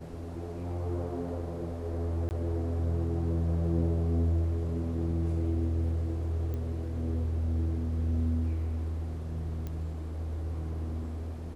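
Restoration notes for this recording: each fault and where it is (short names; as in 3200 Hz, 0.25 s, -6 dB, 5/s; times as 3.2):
2.29–2.31 gap 19 ms
6.54 pop -26 dBFS
9.67 pop -25 dBFS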